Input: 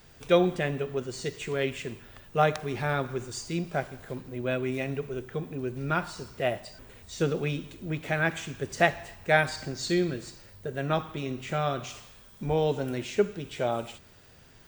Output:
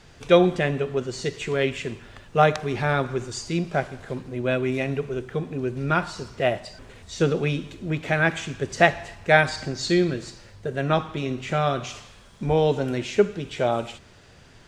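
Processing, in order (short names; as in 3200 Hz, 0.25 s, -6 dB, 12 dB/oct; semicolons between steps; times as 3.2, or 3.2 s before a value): LPF 7500 Hz 12 dB/oct; gain +5.5 dB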